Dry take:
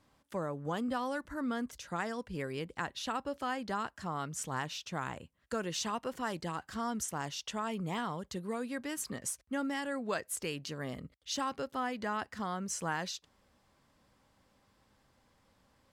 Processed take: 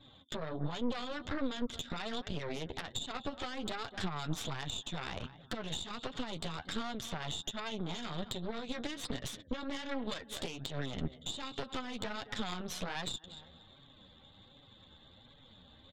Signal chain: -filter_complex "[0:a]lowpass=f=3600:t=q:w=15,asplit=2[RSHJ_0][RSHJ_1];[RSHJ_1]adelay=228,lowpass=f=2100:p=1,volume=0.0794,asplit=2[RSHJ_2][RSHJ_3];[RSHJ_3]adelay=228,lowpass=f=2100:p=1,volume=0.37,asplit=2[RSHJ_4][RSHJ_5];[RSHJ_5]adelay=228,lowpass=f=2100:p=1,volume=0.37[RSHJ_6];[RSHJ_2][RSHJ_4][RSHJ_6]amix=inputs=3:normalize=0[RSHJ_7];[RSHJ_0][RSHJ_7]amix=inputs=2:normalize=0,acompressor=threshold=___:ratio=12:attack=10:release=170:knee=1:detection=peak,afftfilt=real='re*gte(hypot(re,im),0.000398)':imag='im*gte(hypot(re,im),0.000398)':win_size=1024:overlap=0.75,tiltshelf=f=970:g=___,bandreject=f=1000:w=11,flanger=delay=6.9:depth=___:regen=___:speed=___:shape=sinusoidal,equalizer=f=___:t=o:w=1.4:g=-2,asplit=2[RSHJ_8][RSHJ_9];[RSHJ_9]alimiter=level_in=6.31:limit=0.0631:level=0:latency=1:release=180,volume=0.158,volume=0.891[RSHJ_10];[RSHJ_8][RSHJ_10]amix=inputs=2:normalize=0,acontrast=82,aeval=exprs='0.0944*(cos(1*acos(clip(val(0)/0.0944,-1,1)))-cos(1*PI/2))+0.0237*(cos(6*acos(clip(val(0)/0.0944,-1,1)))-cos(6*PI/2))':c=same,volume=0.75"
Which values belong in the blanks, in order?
0.00708, 4, 6.1, 15, 1.3, 410